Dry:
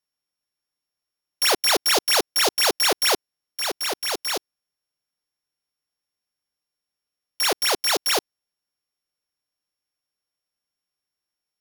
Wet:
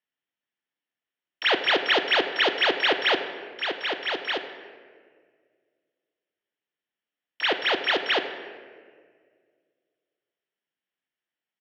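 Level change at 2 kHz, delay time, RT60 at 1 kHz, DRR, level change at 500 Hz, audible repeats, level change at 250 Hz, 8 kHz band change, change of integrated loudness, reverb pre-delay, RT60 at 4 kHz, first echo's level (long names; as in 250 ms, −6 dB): +3.5 dB, 98 ms, 1.6 s, 7.5 dB, −0.5 dB, 1, +0.5 dB, below −25 dB, −3.0 dB, 3 ms, 1.1 s, −18.0 dB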